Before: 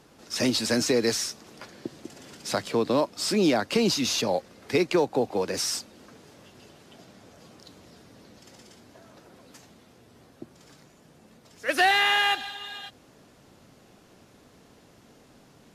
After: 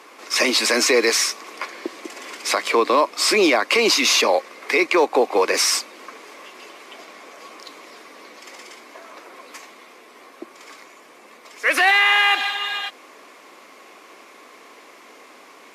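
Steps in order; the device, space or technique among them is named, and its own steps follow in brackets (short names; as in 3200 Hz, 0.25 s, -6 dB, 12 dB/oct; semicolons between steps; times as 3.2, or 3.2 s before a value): laptop speaker (HPF 320 Hz 24 dB/oct; bell 1100 Hz +12 dB 0.29 oct; bell 2200 Hz +11.5 dB 0.5 oct; limiter -16.5 dBFS, peak gain reduction 10.5 dB); gain +9 dB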